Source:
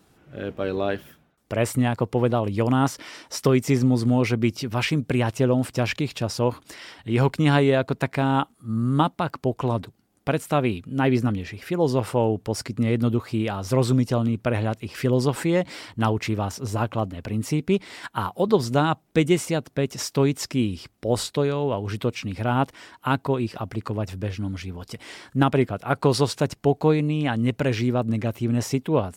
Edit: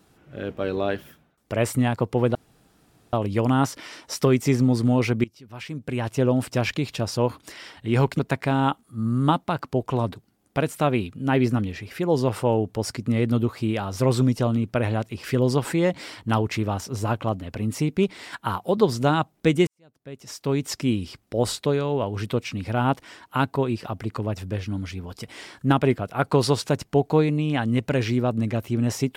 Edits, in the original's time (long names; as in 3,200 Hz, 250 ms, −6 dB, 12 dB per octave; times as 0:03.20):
0:02.35: splice in room tone 0.78 s
0:04.46–0:05.48: fade in quadratic, from −20 dB
0:07.41–0:07.90: remove
0:19.38–0:20.43: fade in quadratic